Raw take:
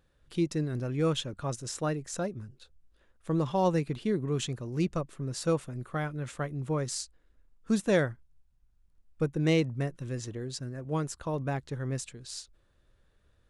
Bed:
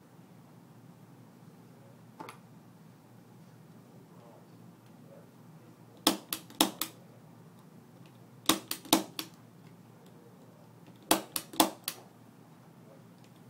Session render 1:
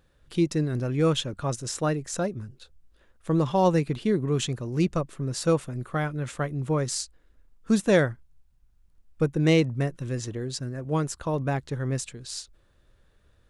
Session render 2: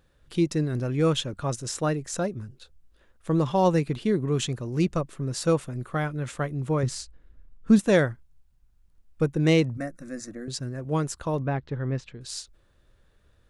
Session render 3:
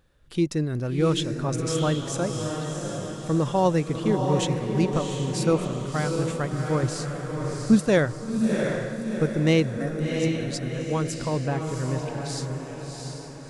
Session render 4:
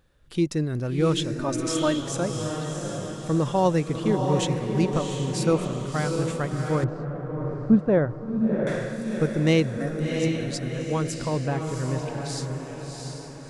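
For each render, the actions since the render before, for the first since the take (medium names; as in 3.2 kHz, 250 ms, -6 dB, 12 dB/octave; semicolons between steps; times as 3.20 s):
trim +5 dB
6.83–7.79 s: tone controls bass +8 dB, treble -7 dB; 9.77–10.48 s: static phaser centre 620 Hz, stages 8; 11.40–12.21 s: distance through air 240 m
echo that smears into a reverb 704 ms, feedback 51%, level -4 dB
1.39–2.02 s: comb 3.3 ms; 6.84–8.67 s: low-pass 1.1 kHz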